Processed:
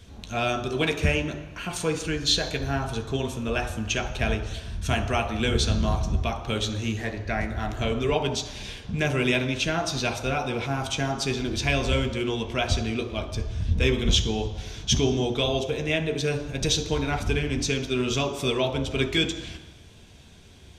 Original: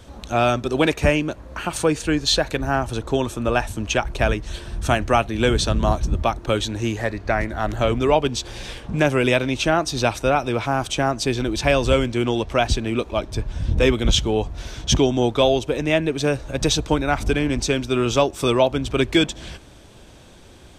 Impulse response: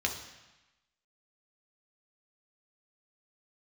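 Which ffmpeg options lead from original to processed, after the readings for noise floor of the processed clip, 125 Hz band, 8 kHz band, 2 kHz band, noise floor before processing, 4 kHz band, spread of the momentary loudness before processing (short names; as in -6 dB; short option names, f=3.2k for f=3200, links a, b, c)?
-47 dBFS, -3.0 dB, -3.5 dB, -4.0 dB, -45 dBFS, -2.5 dB, 7 LU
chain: -filter_complex "[0:a]asplit=2[a][b];[1:a]atrim=start_sample=2205[c];[b][c]afir=irnorm=-1:irlink=0,volume=-4.5dB[d];[a][d]amix=inputs=2:normalize=0,volume=-9dB"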